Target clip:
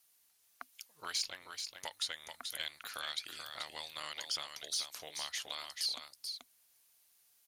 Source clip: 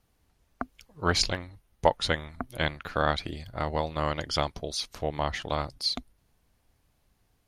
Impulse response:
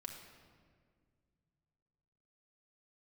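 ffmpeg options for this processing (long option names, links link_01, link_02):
-filter_complex "[0:a]aderivative,acrossover=split=1400|2900[link_01][link_02][link_03];[link_01]acompressor=threshold=-57dB:ratio=4[link_04];[link_02]acompressor=threshold=-54dB:ratio=4[link_05];[link_03]acompressor=threshold=-44dB:ratio=4[link_06];[link_04][link_05][link_06]amix=inputs=3:normalize=0,asplit=2[link_07][link_08];[link_08]asoftclip=type=tanh:threshold=-39dB,volume=-4dB[link_09];[link_07][link_09]amix=inputs=2:normalize=0,aecho=1:1:434:0.473,volume=3.5dB"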